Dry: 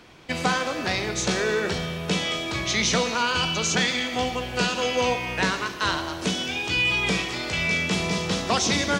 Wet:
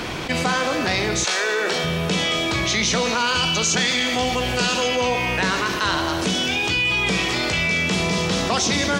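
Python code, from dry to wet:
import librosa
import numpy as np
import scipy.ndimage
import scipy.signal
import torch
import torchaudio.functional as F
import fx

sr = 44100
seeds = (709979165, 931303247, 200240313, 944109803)

y = fx.highpass(x, sr, hz=fx.line((1.23, 950.0), (1.83, 290.0)), slope=12, at=(1.23, 1.83), fade=0.02)
y = fx.peak_eq(y, sr, hz=7400.0, db=4.0, octaves=2.1, at=(3.2, 4.88))
y = fx.env_flatten(y, sr, amount_pct=70)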